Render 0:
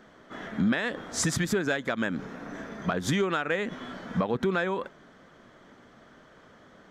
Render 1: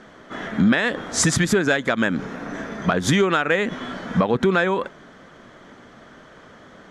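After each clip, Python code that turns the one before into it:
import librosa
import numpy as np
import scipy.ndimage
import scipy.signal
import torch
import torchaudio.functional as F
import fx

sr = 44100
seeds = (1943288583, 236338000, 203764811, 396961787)

y = scipy.signal.sosfilt(scipy.signal.cheby1(10, 1.0, 12000.0, 'lowpass', fs=sr, output='sos'), x)
y = y * 10.0 ** (9.0 / 20.0)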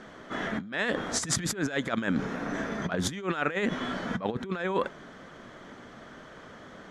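y = fx.over_compress(x, sr, threshold_db=-23.0, ratio=-0.5)
y = y * 10.0 ** (-5.5 / 20.0)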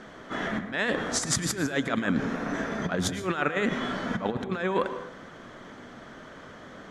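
y = fx.rev_plate(x, sr, seeds[0], rt60_s=0.72, hf_ratio=0.5, predelay_ms=95, drr_db=9.5)
y = y * 10.0 ** (1.5 / 20.0)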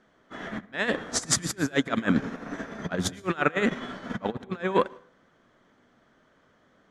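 y = fx.upward_expand(x, sr, threshold_db=-38.0, expansion=2.5)
y = y * 10.0 ** (5.5 / 20.0)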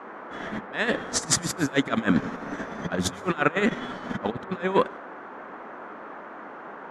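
y = fx.dmg_noise_band(x, sr, seeds[1], low_hz=210.0, high_hz=1500.0, level_db=-42.0)
y = y * 10.0 ** (1.5 / 20.0)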